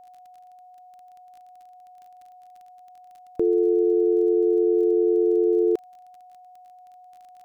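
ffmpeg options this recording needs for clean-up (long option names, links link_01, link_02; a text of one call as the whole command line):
ffmpeg -i in.wav -af "adeclick=threshold=4,bandreject=frequency=730:width=30" out.wav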